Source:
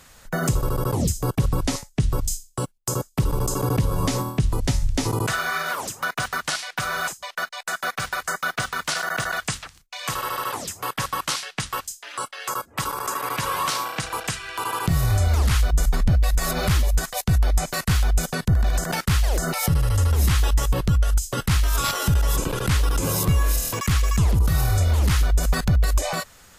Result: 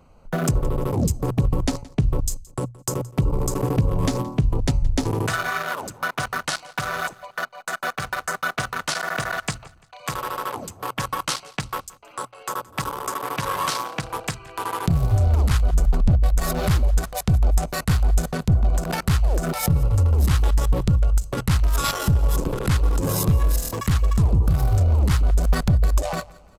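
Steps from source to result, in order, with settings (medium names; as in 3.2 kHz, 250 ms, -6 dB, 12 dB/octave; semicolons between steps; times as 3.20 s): local Wiener filter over 25 samples; hum notches 60/120 Hz; feedback delay 171 ms, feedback 38%, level -22 dB; trim +2 dB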